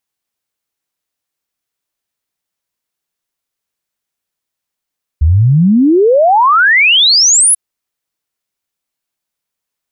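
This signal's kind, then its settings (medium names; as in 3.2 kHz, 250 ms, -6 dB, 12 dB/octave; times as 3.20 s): log sweep 71 Hz -> 11 kHz 2.34 s -5 dBFS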